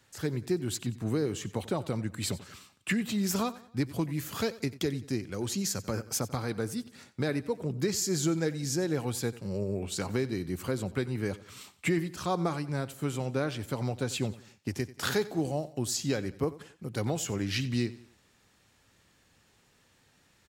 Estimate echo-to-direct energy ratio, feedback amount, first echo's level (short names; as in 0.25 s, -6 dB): -17.0 dB, 41%, -18.0 dB